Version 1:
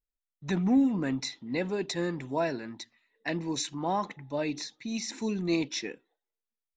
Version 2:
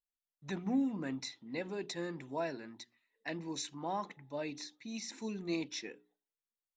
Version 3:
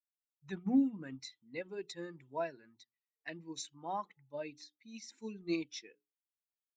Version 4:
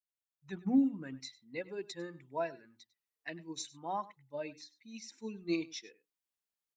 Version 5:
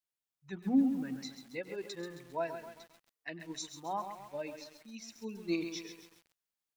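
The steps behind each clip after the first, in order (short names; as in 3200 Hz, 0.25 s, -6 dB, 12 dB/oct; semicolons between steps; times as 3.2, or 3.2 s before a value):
low shelf 87 Hz -9 dB; notches 60/120/180/240/300/360/420 Hz; gain -7.5 dB
per-bin expansion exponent 1.5; upward expander 1.5:1, over -48 dBFS; gain +5 dB
AGC gain up to 9 dB; echo 99 ms -19 dB; gain -7.5 dB
lo-fi delay 0.134 s, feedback 55%, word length 9-bit, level -8 dB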